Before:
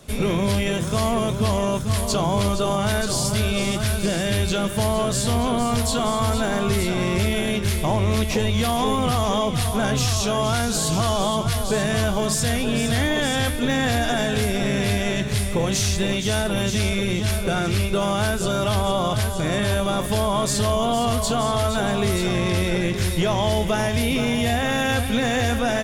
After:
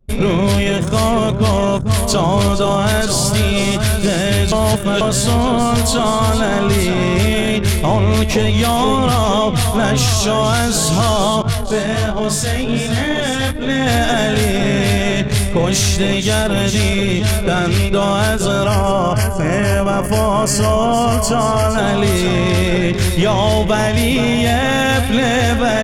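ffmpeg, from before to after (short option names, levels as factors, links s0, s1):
-filter_complex "[0:a]asettb=1/sr,asplit=3[s0][s1][s2];[s0]atrim=end=11.424[s3];[s1]atrim=start=11.42:end=13.87,asetpts=PTS-STARTPTS,afade=t=in:d=0.004:c=qsin,afade=t=out:st=2.446:d=0.004:c=qsin,flanger=delay=18:depth=5.6:speed=1.3[s4];[s2]atrim=start=13.866[s5];[s3][s4]acrossfade=d=0.004:c1=hsin:c2=qsin[s6];[s6][s5]acrossfade=d=0.004:c1=qsin:c2=hsin,asettb=1/sr,asplit=3[s7][s8][s9];[s7]atrim=end=18.664[s10];[s8]atrim=start=18.66:end=21.78,asetpts=PTS-STARTPTS,afade=t=in:d=0.004:c=qsin,afade=t=out:st=3.116:d=0.004:c=qsin,asuperstop=centerf=3700:order=4:qfactor=3.2[s11];[s9]atrim=start=21.776[s12];[s10][s11]acrossfade=d=0.004:c1=hsin:c2=qsin[s13];[s13][s12]acrossfade=d=0.004:c1=qsin:c2=hsin,asplit=3[s14][s15][s16];[s14]atrim=end=4.522[s17];[s15]atrim=start=4.518:end=5.012,asetpts=PTS-STARTPTS,areverse[s18];[s16]atrim=start=5.008[s19];[s17][s18]acrossfade=d=0.004:c1=hsin:c2=hsin[s20];[s20][s19]acrossfade=d=0.004:c1=hsin:c2=hsin,anlmdn=39.8,volume=2.24"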